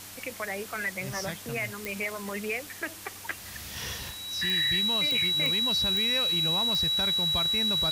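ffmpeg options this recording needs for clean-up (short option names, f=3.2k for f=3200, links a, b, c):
-af "adeclick=t=4,bandreject=f=97.4:t=h:w=4,bandreject=f=194.8:t=h:w=4,bandreject=f=292.2:t=h:w=4,bandreject=f=3.9k:w=30,afftdn=nr=30:nf=-43"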